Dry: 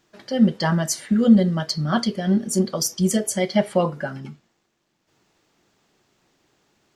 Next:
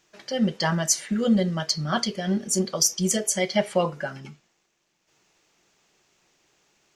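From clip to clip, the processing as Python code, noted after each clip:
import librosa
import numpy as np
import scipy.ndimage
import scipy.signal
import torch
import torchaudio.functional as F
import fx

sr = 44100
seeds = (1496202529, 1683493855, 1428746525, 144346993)

y = fx.graphic_eq_15(x, sr, hz=(100, 250, 2500, 6300), db=(-8, -6, 5, 7))
y = F.gain(torch.from_numpy(y), -2.0).numpy()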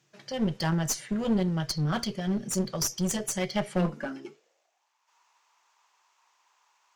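y = fx.filter_sweep_highpass(x, sr, from_hz=130.0, to_hz=980.0, start_s=3.62, end_s=4.92, q=7.0)
y = fx.clip_asym(y, sr, top_db=-25.0, bottom_db=-10.0)
y = F.gain(torch.from_numpy(y), -5.5).numpy()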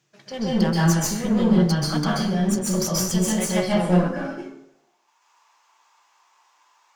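y = fx.rev_plate(x, sr, seeds[0], rt60_s=0.75, hf_ratio=0.6, predelay_ms=120, drr_db=-6.0)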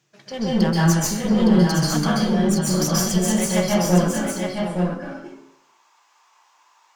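y = x + 10.0 ** (-5.5 / 20.0) * np.pad(x, (int(863 * sr / 1000.0), 0))[:len(x)]
y = F.gain(torch.from_numpy(y), 1.5).numpy()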